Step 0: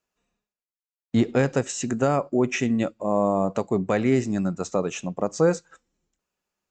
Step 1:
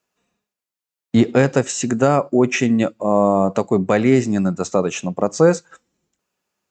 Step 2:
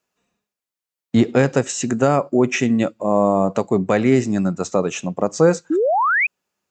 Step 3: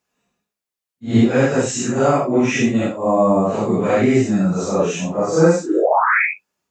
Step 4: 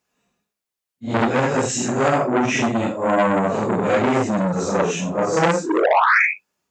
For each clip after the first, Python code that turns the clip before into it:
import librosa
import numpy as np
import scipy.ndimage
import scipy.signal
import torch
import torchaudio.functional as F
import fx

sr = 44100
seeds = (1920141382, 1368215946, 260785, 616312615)

y1 = scipy.signal.sosfilt(scipy.signal.butter(2, 84.0, 'highpass', fs=sr, output='sos'), x)
y1 = y1 * 10.0 ** (6.5 / 20.0)
y2 = fx.spec_paint(y1, sr, seeds[0], shape='rise', start_s=5.7, length_s=0.57, low_hz=290.0, high_hz=2600.0, level_db=-16.0)
y2 = y2 * 10.0 ** (-1.0 / 20.0)
y3 = fx.phase_scramble(y2, sr, seeds[1], window_ms=200)
y3 = y3 * 10.0 ** (1.5 / 20.0)
y4 = fx.transformer_sat(y3, sr, knee_hz=1700.0)
y4 = y4 * 10.0 ** (1.0 / 20.0)